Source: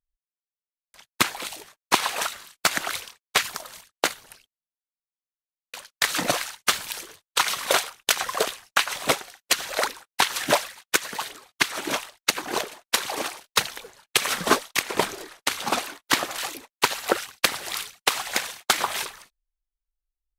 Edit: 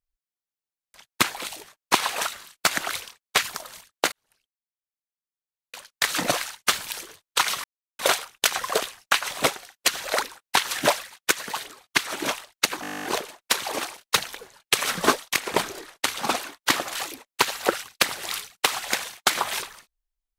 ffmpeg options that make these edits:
ffmpeg -i in.wav -filter_complex "[0:a]asplit=14[link_01][link_02][link_03][link_04][link_05][link_06][link_07][link_08][link_09][link_10][link_11][link_12][link_13][link_14];[link_01]atrim=end=4.12,asetpts=PTS-STARTPTS,afade=type=out:start_time=4.116:duration=0.004:curve=hsin[link_15];[link_02]atrim=start=4.12:end=7.64,asetpts=PTS-STARTPTS,afade=type=in:duration=2.05,afade=type=out:start_time=3.516:duration=0.004:curve=hsin,apad=pad_dur=0.35[link_16];[link_03]atrim=start=7.64:end=12.492,asetpts=PTS-STARTPTS,afade=type=in:duration=0.004:curve=hsin[link_17];[link_04]atrim=start=12.468:end=12.492[link_18];[link_05]atrim=start=12.468:end=12.492[link_19];[link_06]atrim=start=12.468:end=12.492[link_20];[link_07]atrim=start=12.468:end=12.492[link_21];[link_08]atrim=start=12.468:end=12.492[link_22];[link_09]atrim=start=12.468:end=12.492[link_23];[link_10]atrim=start=12.468:end=12.492[link_24];[link_11]atrim=start=12.468:end=12.492[link_25];[link_12]atrim=start=12.468:end=12.492[link_26];[link_13]atrim=start=12.468:end=12.492[link_27];[link_14]atrim=start=12.468[link_28];[link_15][link_16][link_17]concat=n=3:v=0:a=1[link_29];[link_29][link_18]acrossfade=duration=0.004:curve1=hsin:curve2=hsin[link_30];[link_30][link_19]acrossfade=duration=0.004:curve1=hsin:curve2=hsin[link_31];[link_31][link_20]acrossfade=duration=0.004:curve1=hsin:curve2=hsin[link_32];[link_32][link_21]acrossfade=duration=0.004:curve1=hsin:curve2=hsin[link_33];[link_33][link_22]acrossfade=duration=0.004:curve1=hsin:curve2=hsin[link_34];[link_34][link_23]acrossfade=duration=0.004:curve1=hsin:curve2=hsin[link_35];[link_35][link_24]acrossfade=duration=0.004:curve1=hsin:curve2=hsin[link_36];[link_36][link_25]acrossfade=duration=0.004:curve1=hsin:curve2=hsin[link_37];[link_37][link_26]acrossfade=duration=0.004:curve1=hsin:curve2=hsin[link_38];[link_38][link_27]acrossfade=duration=0.004:curve1=hsin:curve2=hsin[link_39];[link_39][link_28]acrossfade=duration=0.004:curve1=hsin:curve2=hsin" out.wav

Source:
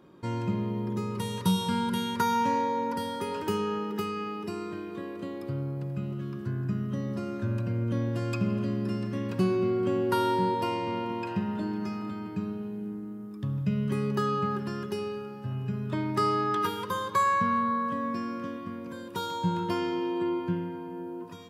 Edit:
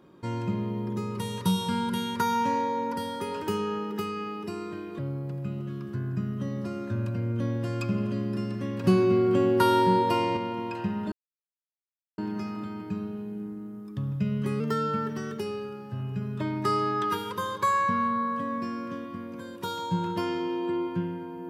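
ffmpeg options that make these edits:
ffmpeg -i in.wav -filter_complex "[0:a]asplit=7[link_01][link_02][link_03][link_04][link_05][link_06][link_07];[link_01]atrim=end=4.992[link_08];[link_02]atrim=start=5.508:end=9.362[link_09];[link_03]atrim=start=9.358:end=10.892,asetpts=PTS-STARTPTS,volume=4.5dB[link_10];[link_04]atrim=start=10.888:end=11.64,asetpts=PTS-STARTPTS,afade=type=out:start_time=0.748:duration=0.004:curve=hsin,apad=pad_dur=1.06[link_11];[link_05]atrim=start=11.64:end=14.064,asetpts=PTS-STARTPTS,afade=type=in:duration=0.004:curve=hsin[link_12];[link_06]atrim=start=14.06:end=14.92,asetpts=PTS-STARTPTS,asetrate=47628,aresample=44100[link_13];[link_07]atrim=start=14.916[link_14];[link_08][link_09]acrossfade=duration=0.004:curve1=hsin:curve2=hsin[link_15];[link_15][link_10]acrossfade=duration=0.004:curve1=hsin:curve2=hsin[link_16];[link_11][link_12]concat=n=2:v=0:a=1[link_17];[link_16][link_17]acrossfade=duration=0.004:curve1=hsin:curve2=hsin[link_18];[link_18][link_13]acrossfade=duration=0.004:curve1=hsin:curve2=hsin[link_19];[link_19][link_14]acrossfade=duration=0.004:curve1=hsin:curve2=hsin" out.wav

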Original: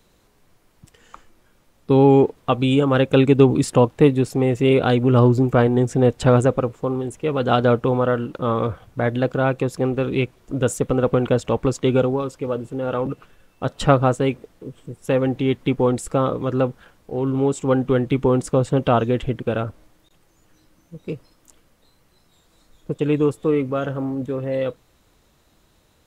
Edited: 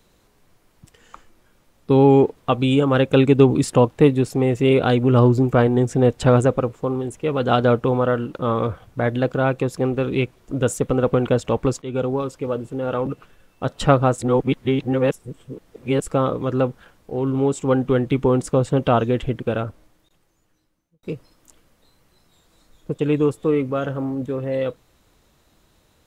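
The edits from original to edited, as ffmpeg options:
ffmpeg -i in.wav -filter_complex "[0:a]asplit=5[link_01][link_02][link_03][link_04][link_05];[link_01]atrim=end=11.82,asetpts=PTS-STARTPTS,afade=type=out:start_time=11.816:duration=0.004:curve=hsin:silence=0.125893[link_06];[link_02]atrim=start=11.82:end=14.182,asetpts=PTS-STARTPTS,afade=type=in:duration=0.36:silence=0.125893[link_07];[link_03]atrim=start=14.178:end=16.022,asetpts=PTS-STARTPTS,areverse[link_08];[link_04]atrim=start=16.018:end=21.03,asetpts=PTS-STARTPTS,afade=type=out:start_time=3.482:duration=1.53[link_09];[link_05]atrim=start=21.03,asetpts=PTS-STARTPTS,afade=type=in:duration=0.004:curve=hsin[link_10];[link_06][link_07]concat=n=2:v=0:a=1[link_11];[link_11][link_08]acrossfade=duration=0.004:curve1=hsin:curve2=hsin[link_12];[link_09][link_10]concat=n=2:v=0:a=1[link_13];[link_12][link_13]acrossfade=duration=0.004:curve1=hsin:curve2=hsin" out.wav

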